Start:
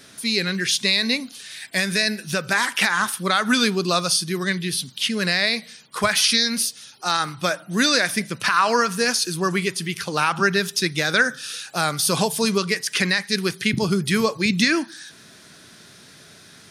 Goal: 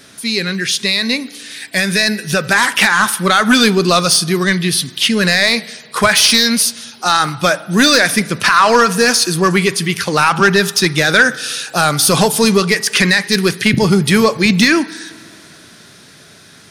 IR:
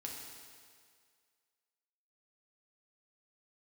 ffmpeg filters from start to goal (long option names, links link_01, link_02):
-filter_complex "[0:a]dynaudnorm=framelen=120:gausssize=31:maxgain=11.5dB,asoftclip=type=tanh:threshold=-7.5dB,asplit=2[link_01][link_02];[1:a]atrim=start_sample=2205,lowpass=3400[link_03];[link_02][link_03]afir=irnorm=-1:irlink=0,volume=-13dB[link_04];[link_01][link_04]amix=inputs=2:normalize=0,volume=4.5dB"